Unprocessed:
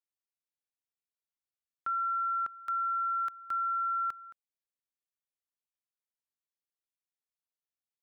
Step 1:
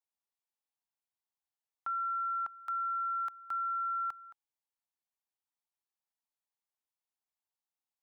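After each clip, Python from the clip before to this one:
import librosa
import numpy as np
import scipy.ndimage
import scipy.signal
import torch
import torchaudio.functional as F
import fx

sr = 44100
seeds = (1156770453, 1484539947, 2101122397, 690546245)

y = fx.curve_eq(x, sr, hz=(520.0, 840.0, 1400.0), db=(0, 13, 3))
y = y * librosa.db_to_amplitude(-6.5)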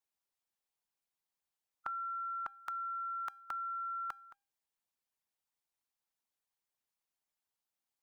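y = fx.hpss(x, sr, part='harmonic', gain_db=-11)
y = fx.comb_fb(y, sr, f0_hz=800.0, decay_s=0.41, harmonics='all', damping=0.0, mix_pct=50)
y = y * librosa.db_to_amplitude(11.5)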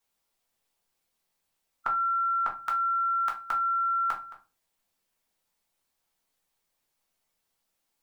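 y = fx.room_shoebox(x, sr, seeds[0], volume_m3=130.0, walls='furnished', distance_m=1.6)
y = y * librosa.db_to_amplitude(8.5)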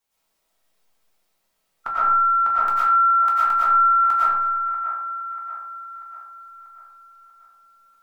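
y = fx.echo_wet_bandpass(x, sr, ms=639, feedback_pct=48, hz=1000.0, wet_db=-9)
y = fx.rev_freeverb(y, sr, rt60_s=0.92, hf_ratio=0.45, predelay_ms=70, drr_db=-8.0)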